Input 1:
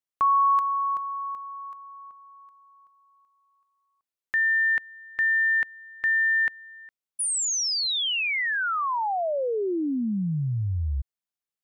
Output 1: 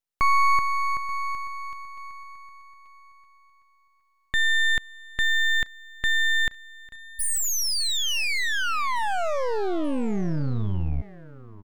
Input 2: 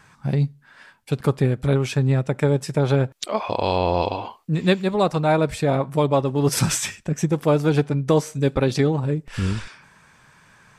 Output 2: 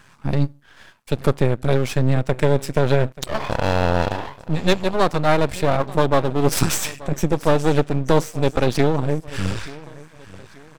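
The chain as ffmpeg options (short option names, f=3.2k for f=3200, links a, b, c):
-af "aecho=1:1:883|1766|2649:0.106|0.0403|0.0153,aeval=exprs='max(val(0),0)':c=same,volume=5dB"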